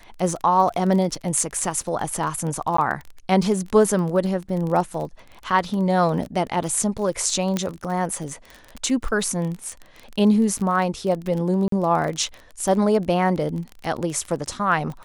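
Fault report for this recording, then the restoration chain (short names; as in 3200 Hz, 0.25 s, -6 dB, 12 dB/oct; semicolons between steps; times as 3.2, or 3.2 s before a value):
crackle 27/s -27 dBFS
2.77–2.78 gap 14 ms
7.57 pop -9 dBFS
11.68–11.72 gap 43 ms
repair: de-click; interpolate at 2.77, 14 ms; interpolate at 11.68, 43 ms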